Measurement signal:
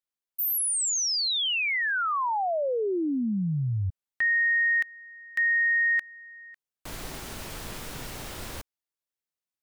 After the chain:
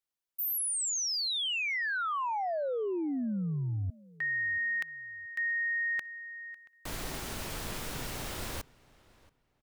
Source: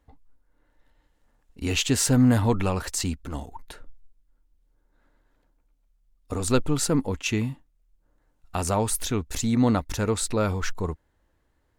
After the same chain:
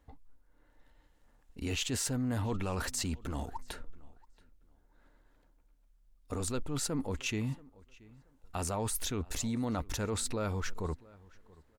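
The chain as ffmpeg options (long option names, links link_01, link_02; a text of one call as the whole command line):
ffmpeg -i in.wav -filter_complex "[0:a]areverse,acompressor=threshold=-31dB:ratio=6:attack=4:release=57:knee=1:detection=rms,areverse,asplit=2[link_01][link_02];[link_02]adelay=679,lowpass=frequency=3900:poles=1,volume=-23dB,asplit=2[link_03][link_04];[link_04]adelay=679,lowpass=frequency=3900:poles=1,volume=0.24[link_05];[link_01][link_03][link_05]amix=inputs=3:normalize=0" out.wav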